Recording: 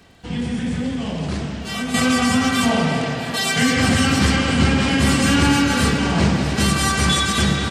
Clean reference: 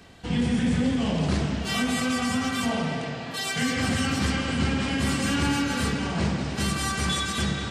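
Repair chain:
click removal
echo removal 651 ms −15.5 dB
level correction −8.5 dB, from 0:01.94

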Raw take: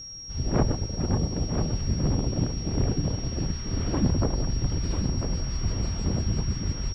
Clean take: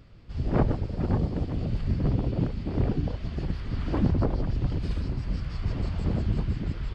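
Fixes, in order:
notch filter 5,600 Hz, Q 30
echo removal 995 ms −7 dB

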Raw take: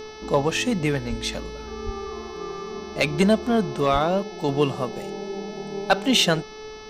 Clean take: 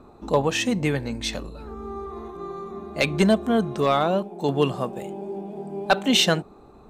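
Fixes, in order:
hum removal 433.3 Hz, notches 14
notch filter 430 Hz, Q 30
0:01.09–0:01.21: high-pass filter 140 Hz 24 dB per octave
0:01.85–0:01.97: high-pass filter 140 Hz 24 dB per octave
0:03.92–0:04.04: high-pass filter 140 Hz 24 dB per octave
downward expander −29 dBFS, range −21 dB

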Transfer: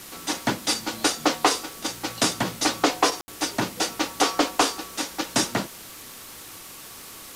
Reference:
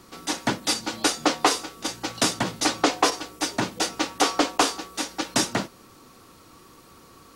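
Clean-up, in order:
click removal
ambience match 0:03.21–0:03.28
noise reduction from a noise print 9 dB

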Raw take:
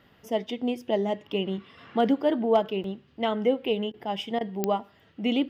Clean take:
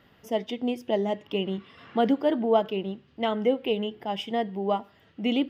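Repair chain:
clipped peaks rebuilt −11.5 dBFS
click removal
repair the gap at 0:02.84, 2.4 ms
repair the gap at 0:03.92/0:04.39, 17 ms

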